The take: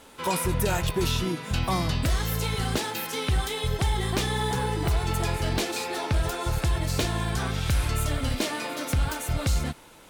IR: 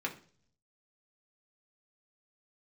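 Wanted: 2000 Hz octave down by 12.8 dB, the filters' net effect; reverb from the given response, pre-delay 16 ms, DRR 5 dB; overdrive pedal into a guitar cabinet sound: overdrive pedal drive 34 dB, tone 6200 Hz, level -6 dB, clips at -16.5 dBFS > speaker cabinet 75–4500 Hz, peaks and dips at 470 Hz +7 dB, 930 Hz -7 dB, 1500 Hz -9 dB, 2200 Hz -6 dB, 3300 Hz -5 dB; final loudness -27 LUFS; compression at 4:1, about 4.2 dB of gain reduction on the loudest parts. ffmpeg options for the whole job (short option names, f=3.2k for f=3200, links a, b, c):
-filter_complex "[0:a]equalizer=f=2k:t=o:g=-9,acompressor=threshold=-25dB:ratio=4,asplit=2[a][b];[1:a]atrim=start_sample=2205,adelay=16[c];[b][c]afir=irnorm=-1:irlink=0,volume=-9dB[d];[a][d]amix=inputs=2:normalize=0,asplit=2[e][f];[f]highpass=f=720:p=1,volume=34dB,asoftclip=type=tanh:threshold=-16.5dB[g];[e][g]amix=inputs=2:normalize=0,lowpass=f=6.2k:p=1,volume=-6dB,highpass=75,equalizer=f=470:t=q:w=4:g=7,equalizer=f=930:t=q:w=4:g=-7,equalizer=f=1.5k:t=q:w=4:g=-9,equalizer=f=2.2k:t=q:w=4:g=-6,equalizer=f=3.3k:t=q:w=4:g=-5,lowpass=f=4.5k:w=0.5412,lowpass=f=4.5k:w=1.3066,volume=-2.5dB"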